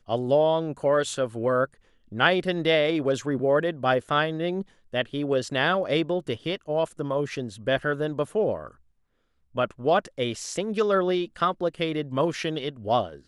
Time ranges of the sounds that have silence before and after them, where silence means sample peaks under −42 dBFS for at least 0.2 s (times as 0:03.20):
0:02.12–0:04.63
0:04.93–0:08.71